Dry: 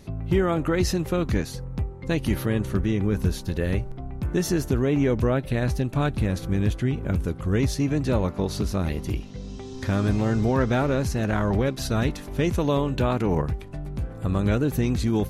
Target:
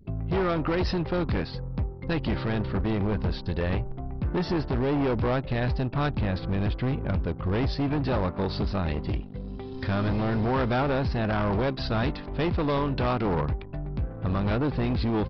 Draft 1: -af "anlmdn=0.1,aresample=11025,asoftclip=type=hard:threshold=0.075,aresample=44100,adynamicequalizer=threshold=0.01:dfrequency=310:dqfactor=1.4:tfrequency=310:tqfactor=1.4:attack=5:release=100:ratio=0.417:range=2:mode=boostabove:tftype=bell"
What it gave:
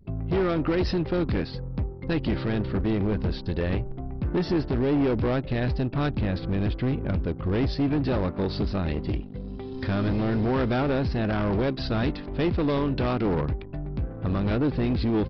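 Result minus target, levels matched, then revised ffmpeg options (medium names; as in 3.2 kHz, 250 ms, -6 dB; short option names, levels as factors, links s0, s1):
1 kHz band -4.0 dB
-af "anlmdn=0.1,aresample=11025,asoftclip=type=hard:threshold=0.075,aresample=44100,adynamicequalizer=threshold=0.01:dfrequency=960:dqfactor=1.4:tfrequency=960:tqfactor=1.4:attack=5:release=100:ratio=0.417:range=2:mode=boostabove:tftype=bell"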